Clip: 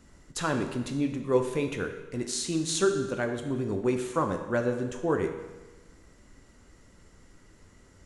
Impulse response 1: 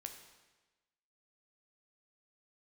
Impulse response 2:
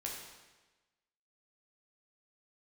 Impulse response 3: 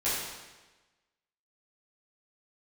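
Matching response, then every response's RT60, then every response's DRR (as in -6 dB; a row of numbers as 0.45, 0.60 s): 1; 1.2, 1.2, 1.2 s; 4.5, -2.5, -12.0 dB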